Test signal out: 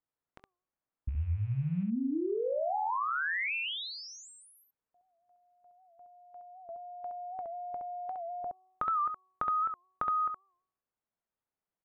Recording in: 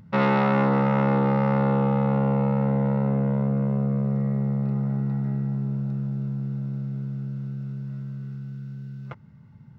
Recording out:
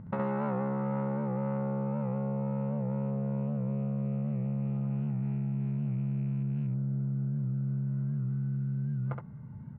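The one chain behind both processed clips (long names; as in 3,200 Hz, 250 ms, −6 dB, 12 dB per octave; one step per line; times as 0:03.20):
loose part that buzzes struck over −25 dBFS, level −35 dBFS
low-pass filter 1,300 Hz 12 dB per octave
hum removal 372.9 Hz, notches 3
downward compressor 10 to 1, threshold −35 dBFS
on a send: ambience of single reflections 22 ms −16 dB, 68 ms −4 dB
on the sum: wow of a warped record 78 rpm, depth 100 cents
level +3 dB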